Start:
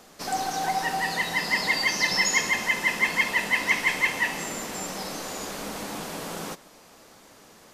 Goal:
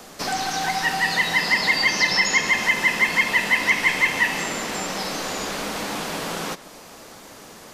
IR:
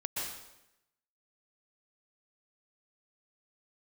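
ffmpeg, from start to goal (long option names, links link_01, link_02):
-filter_complex "[0:a]acrossover=split=290|1200|5600[link_01][link_02][link_03][link_04];[link_01]acompressor=threshold=-45dB:ratio=4[link_05];[link_02]acompressor=threshold=-40dB:ratio=4[link_06];[link_03]acompressor=threshold=-26dB:ratio=4[link_07];[link_04]acompressor=threshold=-49dB:ratio=4[link_08];[link_05][link_06][link_07][link_08]amix=inputs=4:normalize=0,volume=9dB"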